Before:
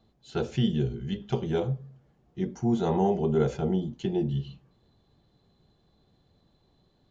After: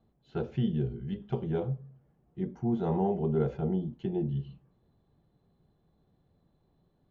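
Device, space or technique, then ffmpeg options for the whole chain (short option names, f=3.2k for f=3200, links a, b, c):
phone in a pocket: -af "lowpass=3.6k,equalizer=f=160:t=o:w=0.25:g=4,highshelf=f=2.3k:g=-10,volume=-4dB"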